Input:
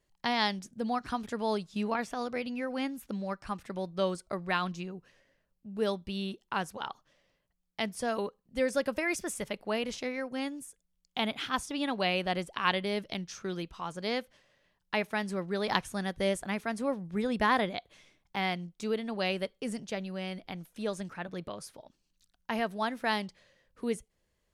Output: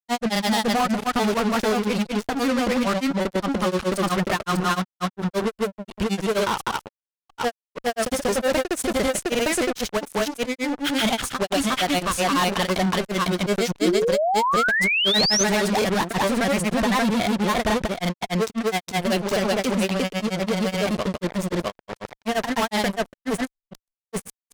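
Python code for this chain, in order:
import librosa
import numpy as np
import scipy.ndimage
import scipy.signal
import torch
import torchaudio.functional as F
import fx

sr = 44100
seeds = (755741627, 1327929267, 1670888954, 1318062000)

y = fx.fuzz(x, sr, gain_db=42.0, gate_db=-42.0)
y = fx.granulator(y, sr, seeds[0], grain_ms=100.0, per_s=24.0, spray_ms=596.0, spread_st=0)
y = fx.spec_paint(y, sr, seeds[1], shape='rise', start_s=13.81, length_s=1.63, low_hz=290.0, high_hz=6500.0, level_db=-18.0)
y = F.gain(torch.from_numpy(y), -3.0).numpy()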